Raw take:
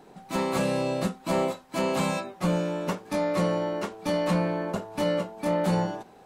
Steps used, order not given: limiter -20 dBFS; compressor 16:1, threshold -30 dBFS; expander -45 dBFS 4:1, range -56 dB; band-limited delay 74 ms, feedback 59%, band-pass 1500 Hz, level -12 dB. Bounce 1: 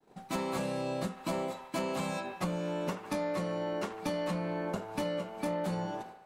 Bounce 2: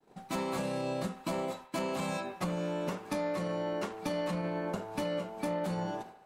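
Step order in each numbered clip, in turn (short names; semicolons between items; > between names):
expander > band-limited delay > compressor > limiter; limiter > compressor > expander > band-limited delay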